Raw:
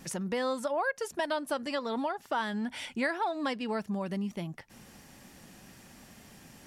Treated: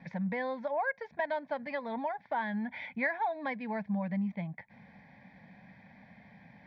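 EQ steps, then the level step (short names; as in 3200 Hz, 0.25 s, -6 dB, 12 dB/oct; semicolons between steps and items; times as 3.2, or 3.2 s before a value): speaker cabinet 100–2800 Hz, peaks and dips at 190 Hz +6 dB, 430 Hz +4 dB, 2300 Hz +6 dB; fixed phaser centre 1900 Hz, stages 8; 0.0 dB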